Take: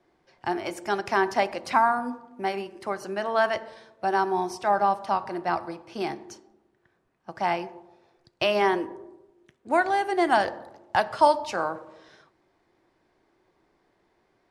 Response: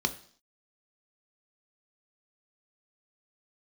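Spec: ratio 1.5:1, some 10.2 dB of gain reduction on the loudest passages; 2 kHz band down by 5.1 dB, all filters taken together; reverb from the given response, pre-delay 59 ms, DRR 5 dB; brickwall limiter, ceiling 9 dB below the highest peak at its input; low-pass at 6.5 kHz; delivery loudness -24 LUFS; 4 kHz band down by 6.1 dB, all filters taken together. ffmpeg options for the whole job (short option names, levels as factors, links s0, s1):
-filter_complex "[0:a]lowpass=6500,equalizer=f=2000:t=o:g=-6,equalizer=f=4000:t=o:g=-5.5,acompressor=threshold=0.00631:ratio=1.5,alimiter=level_in=1.5:limit=0.0631:level=0:latency=1,volume=0.668,asplit=2[s0][s1];[1:a]atrim=start_sample=2205,adelay=59[s2];[s1][s2]afir=irnorm=-1:irlink=0,volume=0.237[s3];[s0][s3]amix=inputs=2:normalize=0,volume=4.73"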